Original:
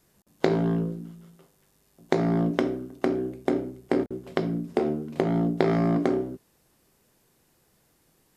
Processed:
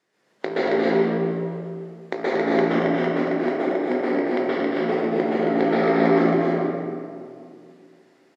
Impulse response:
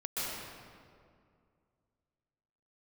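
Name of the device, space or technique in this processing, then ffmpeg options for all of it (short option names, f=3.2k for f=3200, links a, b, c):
station announcement: -filter_complex "[0:a]highpass=320,lowpass=4.6k,equalizer=f=1.9k:t=o:w=0.3:g=6,aecho=1:1:230.3|271.1:0.501|0.708[a];[1:a]atrim=start_sample=2205[b];[a][b]afir=irnorm=-1:irlink=0"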